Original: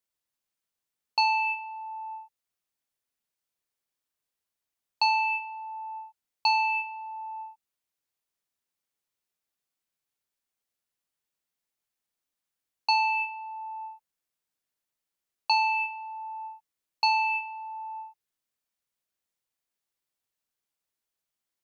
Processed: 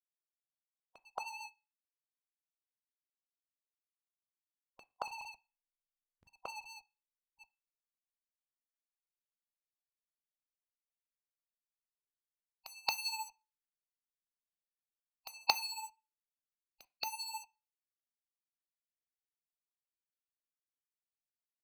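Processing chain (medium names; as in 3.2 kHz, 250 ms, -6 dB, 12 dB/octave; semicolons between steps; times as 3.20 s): low-pass sweep 710 Hz -> 5.1 kHz, 7.25–9.43 s; gate -30 dBFS, range -17 dB; dynamic bell 1.2 kHz, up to -5 dB, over -44 dBFS, Q 3; in parallel at 0 dB: compression 12:1, threshold -33 dBFS, peak gain reduction 16.5 dB; on the sum: rotary cabinet horn 7.5 Hz, later 0.85 Hz, at 6.22 s; pre-echo 226 ms -19.5 dB; hysteresis with a dead band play -34.5 dBFS; tremolo 14 Hz, depth 49%; spectral gate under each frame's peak -10 dB weak; on a send at -13.5 dB: reverberation RT60 0.35 s, pre-delay 3 ms; on the sum: trim +4.5 dB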